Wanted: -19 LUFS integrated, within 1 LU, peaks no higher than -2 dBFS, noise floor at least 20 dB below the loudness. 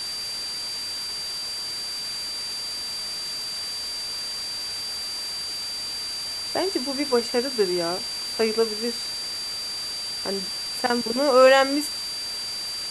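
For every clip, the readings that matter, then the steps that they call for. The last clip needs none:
steady tone 4700 Hz; tone level -29 dBFS; noise floor -31 dBFS; noise floor target -45 dBFS; loudness -25.0 LUFS; peak -4.0 dBFS; loudness target -19.0 LUFS
-> notch 4700 Hz, Q 30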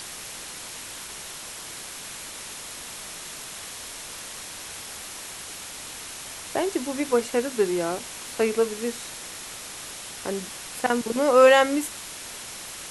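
steady tone none; noise floor -39 dBFS; noise floor target -48 dBFS
-> denoiser 9 dB, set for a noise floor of -39 dBFS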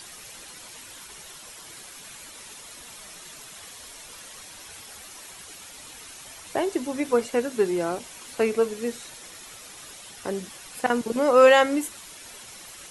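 noise floor -44 dBFS; loudness -23.5 LUFS; peak -4.0 dBFS; loudness target -19.0 LUFS
-> gain +4.5 dB; limiter -2 dBFS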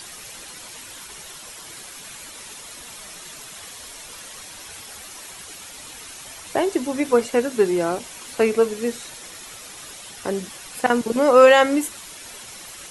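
loudness -19.5 LUFS; peak -2.0 dBFS; noise floor -40 dBFS

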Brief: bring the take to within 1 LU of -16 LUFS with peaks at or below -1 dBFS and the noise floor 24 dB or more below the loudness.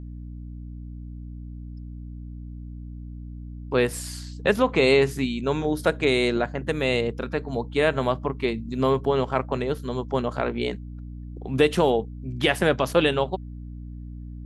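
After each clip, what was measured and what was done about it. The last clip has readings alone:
hum 60 Hz; harmonics up to 300 Hz; hum level -35 dBFS; loudness -24.0 LUFS; peak -6.0 dBFS; loudness target -16.0 LUFS
-> de-hum 60 Hz, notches 5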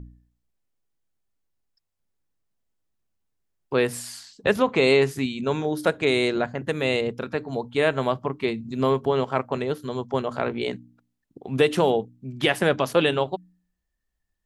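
hum none; loudness -24.0 LUFS; peak -6.0 dBFS; loudness target -16.0 LUFS
-> gain +8 dB; limiter -1 dBFS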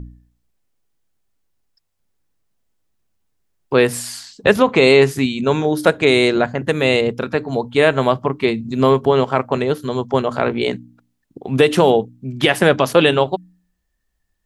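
loudness -16.5 LUFS; peak -1.0 dBFS; noise floor -71 dBFS

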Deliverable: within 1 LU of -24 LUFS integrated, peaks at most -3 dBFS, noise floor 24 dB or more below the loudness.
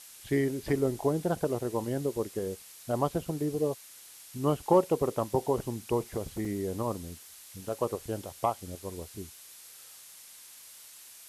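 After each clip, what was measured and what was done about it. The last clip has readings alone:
dropouts 1; longest dropout 3.3 ms; noise floor -51 dBFS; noise floor target -56 dBFS; loudness -31.5 LUFS; peak -11.0 dBFS; loudness target -24.0 LUFS
-> interpolate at 6.45, 3.3 ms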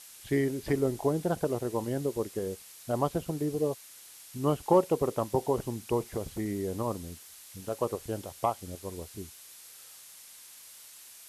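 dropouts 0; noise floor -51 dBFS; noise floor target -56 dBFS
-> denoiser 6 dB, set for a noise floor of -51 dBFS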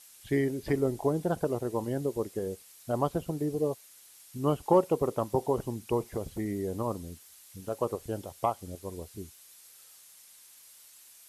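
noise floor -55 dBFS; noise floor target -56 dBFS
-> denoiser 6 dB, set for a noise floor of -55 dBFS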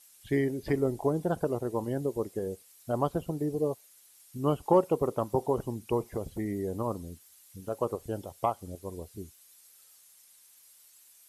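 noise floor -59 dBFS; loudness -31.5 LUFS; peak -11.0 dBFS; loudness target -24.0 LUFS
-> gain +7.5 dB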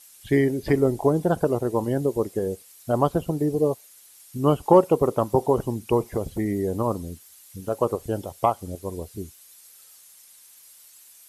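loudness -24.0 LUFS; peak -3.5 dBFS; noise floor -51 dBFS

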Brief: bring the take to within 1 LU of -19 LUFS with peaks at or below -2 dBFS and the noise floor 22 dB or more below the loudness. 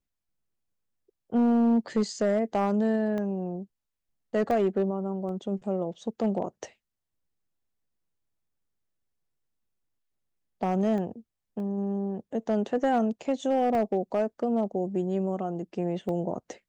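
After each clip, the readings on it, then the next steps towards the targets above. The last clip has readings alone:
clipped 0.8%; flat tops at -18.0 dBFS; dropouts 7; longest dropout 1.2 ms; loudness -28.0 LUFS; peak -18.0 dBFS; loudness target -19.0 LUFS
-> clip repair -18 dBFS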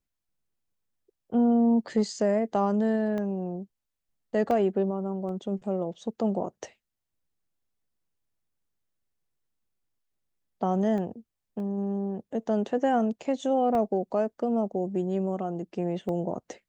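clipped 0.0%; dropouts 7; longest dropout 1.2 ms
-> interpolate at 3.18/4.51/5.29/10.98/11.6/13.75/16.09, 1.2 ms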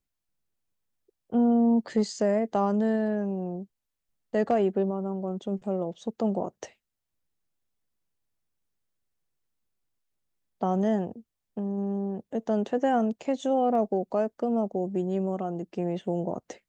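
dropouts 0; loudness -28.0 LUFS; peak -13.0 dBFS; loudness target -19.0 LUFS
-> gain +9 dB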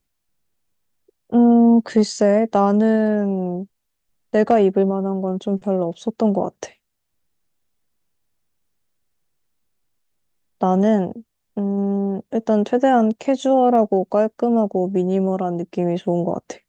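loudness -19.0 LUFS; peak -4.0 dBFS; noise floor -75 dBFS

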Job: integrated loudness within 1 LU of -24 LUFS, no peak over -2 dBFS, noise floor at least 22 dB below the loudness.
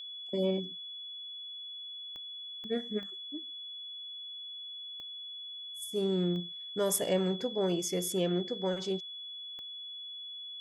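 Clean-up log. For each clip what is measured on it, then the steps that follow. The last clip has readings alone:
clicks 6; steady tone 3400 Hz; tone level -41 dBFS; loudness -35.0 LUFS; peak -15.0 dBFS; loudness target -24.0 LUFS
-> de-click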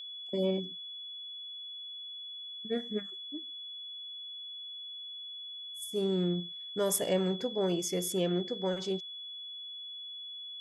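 clicks 0; steady tone 3400 Hz; tone level -41 dBFS
-> notch 3400 Hz, Q 30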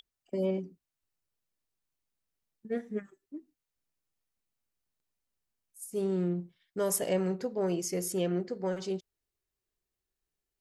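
steady tone none; loudness -33.0 LUFS; peak -15.0 dBFS; loudness target -24.0 LUFS
-> gain +9 dB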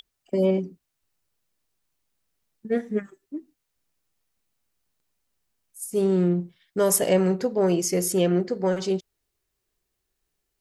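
loudness -24.0 LUFS; peak -6.0 dBFS; noise floor -80 dBFS

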